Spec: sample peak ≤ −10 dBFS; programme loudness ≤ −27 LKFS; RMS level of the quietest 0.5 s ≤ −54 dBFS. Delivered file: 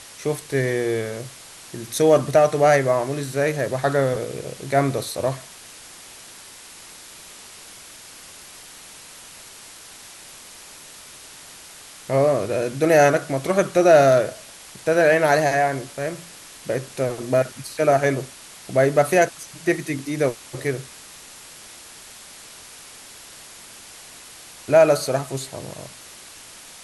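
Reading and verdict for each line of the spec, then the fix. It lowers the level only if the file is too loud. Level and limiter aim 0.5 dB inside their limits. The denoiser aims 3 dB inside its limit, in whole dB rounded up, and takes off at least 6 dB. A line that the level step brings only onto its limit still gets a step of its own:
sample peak −4.0 dBFS: out of spec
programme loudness −20.5 LKFS: out of spec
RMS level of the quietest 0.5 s −43 dBFS: out of spec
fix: broadband denoise 7 dB, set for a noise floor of −43 dBFS
level −7 dB

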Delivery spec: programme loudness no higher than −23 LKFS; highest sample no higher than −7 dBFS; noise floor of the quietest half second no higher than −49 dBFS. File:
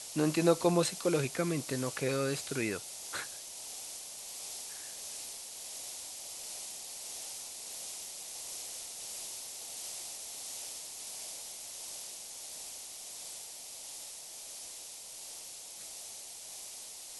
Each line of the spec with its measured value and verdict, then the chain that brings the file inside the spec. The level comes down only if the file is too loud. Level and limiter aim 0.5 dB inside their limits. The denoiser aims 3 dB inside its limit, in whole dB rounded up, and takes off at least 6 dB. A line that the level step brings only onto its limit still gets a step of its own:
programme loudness −37.5 LKFS: in spec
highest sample −12.5 dBFS: in spec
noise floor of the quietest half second −47 dBFS: out of spec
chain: broadband denoise 6 dB, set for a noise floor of −47 dBFS

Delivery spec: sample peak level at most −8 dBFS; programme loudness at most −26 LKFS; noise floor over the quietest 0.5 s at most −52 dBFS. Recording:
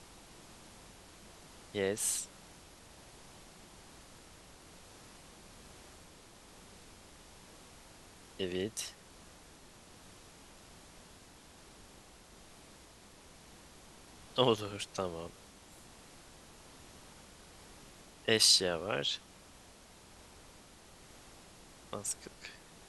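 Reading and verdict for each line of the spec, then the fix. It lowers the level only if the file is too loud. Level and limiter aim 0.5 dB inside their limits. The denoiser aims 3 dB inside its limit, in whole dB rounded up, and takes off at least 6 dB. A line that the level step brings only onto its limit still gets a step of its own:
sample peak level −12.0 dBFS: in spec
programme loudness −32.5 LKFS: in spec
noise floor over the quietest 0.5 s −57 dBFS: in spec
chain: no processing needed

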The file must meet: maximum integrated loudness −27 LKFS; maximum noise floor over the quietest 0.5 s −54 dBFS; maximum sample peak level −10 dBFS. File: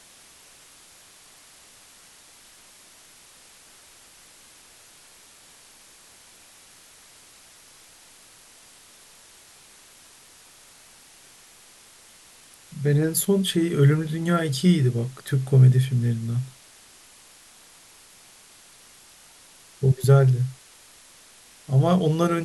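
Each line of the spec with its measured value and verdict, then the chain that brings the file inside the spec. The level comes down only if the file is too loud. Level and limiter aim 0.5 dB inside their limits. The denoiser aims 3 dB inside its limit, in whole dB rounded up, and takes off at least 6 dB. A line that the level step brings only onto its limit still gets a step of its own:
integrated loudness −21.5 LKFS: out of spec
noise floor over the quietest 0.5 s −51 dBFS: out of spec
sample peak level −6.0 dBFS: out of spec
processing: level −6 dB

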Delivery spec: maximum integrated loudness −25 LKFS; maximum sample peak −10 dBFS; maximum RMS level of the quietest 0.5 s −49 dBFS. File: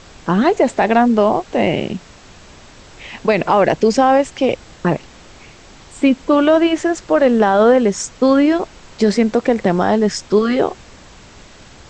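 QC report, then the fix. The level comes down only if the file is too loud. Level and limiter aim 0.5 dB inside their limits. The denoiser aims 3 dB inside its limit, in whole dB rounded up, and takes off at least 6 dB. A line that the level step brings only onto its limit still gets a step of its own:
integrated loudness −15.5 LKFS: out of spec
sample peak −3.5 dBFS: out of spec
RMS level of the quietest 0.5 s −41 dBFS: out of spec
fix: level −10 dB

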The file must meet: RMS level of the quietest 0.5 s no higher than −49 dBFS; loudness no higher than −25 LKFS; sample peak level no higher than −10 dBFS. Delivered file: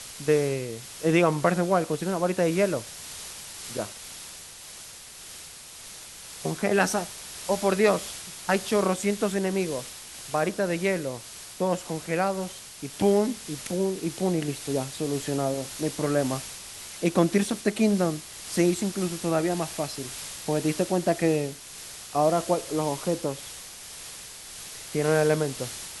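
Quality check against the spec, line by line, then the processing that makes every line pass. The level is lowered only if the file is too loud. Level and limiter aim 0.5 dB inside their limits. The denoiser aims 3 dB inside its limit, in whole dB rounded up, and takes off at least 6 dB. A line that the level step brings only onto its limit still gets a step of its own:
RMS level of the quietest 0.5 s −44 dBFS: out of spec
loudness −27.0 LKFS: in spec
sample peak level −8.0 dBFS: out of spec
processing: broadband denoise 8 dB, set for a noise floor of −44 dBFS
brickwall limiter −10.5 dBFS

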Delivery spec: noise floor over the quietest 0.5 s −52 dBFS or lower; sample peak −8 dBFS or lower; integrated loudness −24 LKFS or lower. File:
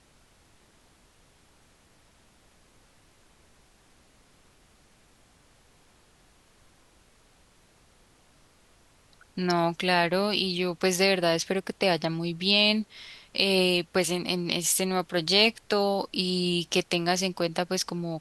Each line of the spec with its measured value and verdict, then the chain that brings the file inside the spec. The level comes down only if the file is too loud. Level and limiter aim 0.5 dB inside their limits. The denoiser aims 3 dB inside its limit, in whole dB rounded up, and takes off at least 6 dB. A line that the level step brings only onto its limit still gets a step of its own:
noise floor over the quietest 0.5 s −60 dBFS: in spec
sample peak −5.5 dBFS: out of spec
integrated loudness −25.5 LKFS: in spec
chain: brickwall limiter −8.5 dBFS

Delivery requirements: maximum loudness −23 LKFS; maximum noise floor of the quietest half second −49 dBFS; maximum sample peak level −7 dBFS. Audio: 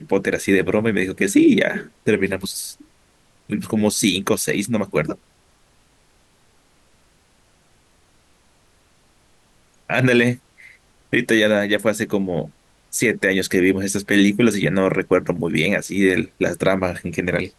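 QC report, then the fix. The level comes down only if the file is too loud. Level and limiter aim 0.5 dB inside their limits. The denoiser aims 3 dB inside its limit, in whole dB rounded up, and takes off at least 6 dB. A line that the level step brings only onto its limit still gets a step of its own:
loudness −19.5 LKFS: out of spec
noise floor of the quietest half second −58 dBFS: in spec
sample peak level −4.5 dBFS: out of spec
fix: level −4 dB

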